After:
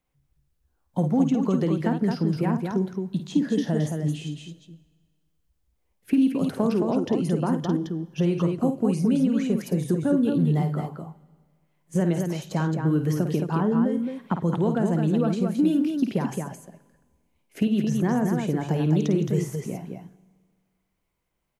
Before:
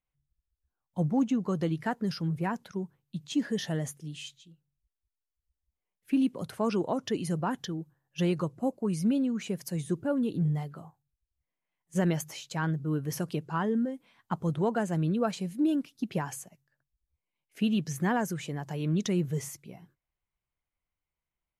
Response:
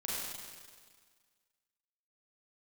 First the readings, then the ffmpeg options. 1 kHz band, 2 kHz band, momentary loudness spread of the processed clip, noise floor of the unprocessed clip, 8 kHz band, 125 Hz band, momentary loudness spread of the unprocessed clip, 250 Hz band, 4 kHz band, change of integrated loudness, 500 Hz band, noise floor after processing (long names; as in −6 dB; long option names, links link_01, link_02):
+3.0 dB, 0.0 dB, 9 LU, below −85 dBFS, −0.5 dB, +7.0 dB, 12 LU, +7.5 dB, 0.0 dB, +6.5 dB, +6.5 dB, −73 dBFS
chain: -filter_complex "[0:a]equalizer=frequency=310:width_type=o:width=2.8:gain=7.5,acrossover=split=310|1300[link_01][link_02][link_03];[link_01]acompressor=threshold=-33dB:ratio=4[link_04];[link_02]acompressor=threshold=-38dB:ratio=4[link_05];[link_03]acompressor=threshold=-52dB:ratio=4[link_06];[link_04][link_05][link_06]amix=inputs=3:normalize=0,aecho=1:1:52.48|218.7:0.398|0.562,asplit=2[link_07][link_08];[1:a]atrim=start_sample=2205[link_09];[link_08][link_09]afir=irnorm=-1:irlink=0,volume=-22dB[link_10];[link_07][link_10]amix=inputs=2:normalize=0,volume=7.5dB"